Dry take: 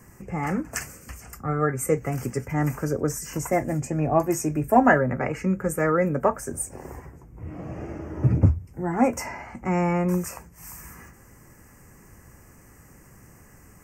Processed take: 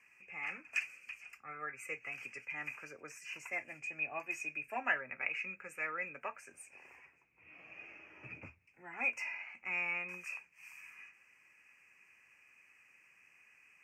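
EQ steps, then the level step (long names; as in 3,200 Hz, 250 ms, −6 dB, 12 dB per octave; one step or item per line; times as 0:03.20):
resonant band-pass 2,500 Hz, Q 17
+12.5 dB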